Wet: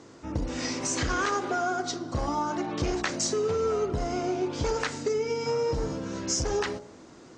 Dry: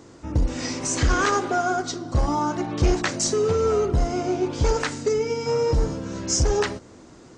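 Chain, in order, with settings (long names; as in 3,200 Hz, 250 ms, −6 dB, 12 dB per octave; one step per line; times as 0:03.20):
low-pass filter 7,700 Hz 12 dB per octave
low-shelf EQ 100 Hz −10 dB
hum removal 59.32 Hz, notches 16
downward compressor 3 to 1, threshold −24 dBFS, peak gain reduction 5 dB
level −1 dB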